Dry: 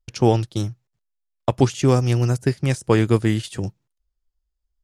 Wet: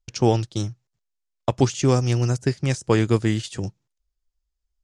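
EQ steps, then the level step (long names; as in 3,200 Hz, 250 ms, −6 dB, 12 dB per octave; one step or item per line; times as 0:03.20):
low-pass with resonance 6,900 Hz, resonance Q 1.7
−2.0 dB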